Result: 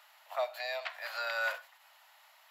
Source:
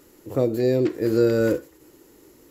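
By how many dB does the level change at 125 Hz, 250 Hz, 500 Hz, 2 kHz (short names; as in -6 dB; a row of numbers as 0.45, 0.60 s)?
under -40 dB, under -40 dB, -18.5 dB, +2.5 dB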